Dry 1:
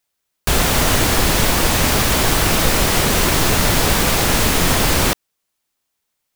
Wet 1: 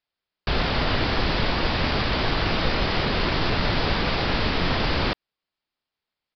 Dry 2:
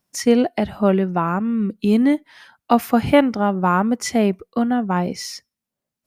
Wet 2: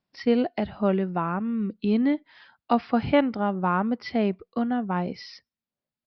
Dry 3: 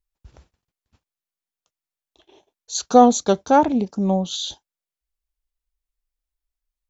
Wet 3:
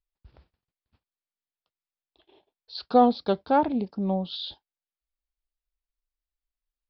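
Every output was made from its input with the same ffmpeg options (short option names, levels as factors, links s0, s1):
-af "aresample=11025,aresample=44100,volume=0.473"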